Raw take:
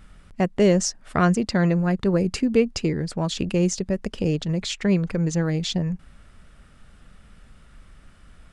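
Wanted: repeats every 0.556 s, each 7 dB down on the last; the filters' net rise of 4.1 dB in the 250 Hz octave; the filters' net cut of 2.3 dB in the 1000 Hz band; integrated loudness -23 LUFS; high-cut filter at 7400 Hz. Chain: LPF 7400 Hz; bell 250 Hz +6.5 dB; bell 1000 Hz -4 dB; feedback echo 0.556 s, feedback 45%, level -7 dB; gain -3.5 dB

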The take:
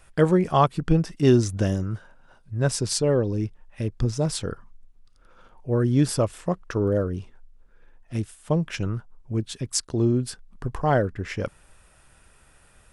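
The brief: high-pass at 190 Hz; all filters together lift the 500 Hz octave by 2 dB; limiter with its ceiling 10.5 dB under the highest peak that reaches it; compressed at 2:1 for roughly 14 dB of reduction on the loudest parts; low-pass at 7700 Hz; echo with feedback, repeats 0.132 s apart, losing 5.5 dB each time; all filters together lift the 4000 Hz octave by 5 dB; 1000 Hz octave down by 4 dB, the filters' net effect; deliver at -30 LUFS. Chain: HPF 190 Hz; LPF 7700 Hz; bell 500 Hz +4.5 dB; bell 1000 Hz -8 dB; bell 4000 Hz +7.5 dB; compressor 2:1, threshold -38 dBFS; limiter -24.5 dBFS; feedback echo 0.132 s, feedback 53%, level -5.5 dB; gain +6 dB

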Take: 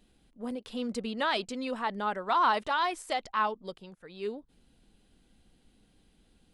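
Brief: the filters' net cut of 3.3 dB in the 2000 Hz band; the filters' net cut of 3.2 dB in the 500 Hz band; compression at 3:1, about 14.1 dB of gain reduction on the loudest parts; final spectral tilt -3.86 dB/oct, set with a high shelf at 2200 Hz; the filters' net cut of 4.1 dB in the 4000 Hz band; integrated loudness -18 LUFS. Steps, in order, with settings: bell 500 Hz -4 dB; bell 2000 Hz -5 dB; high shelf 2200 Hz +3.5 dB; bell 4000 Hz -6.5 dB; compressor 3:1, threshold -43 dBFS; gain +26 dB

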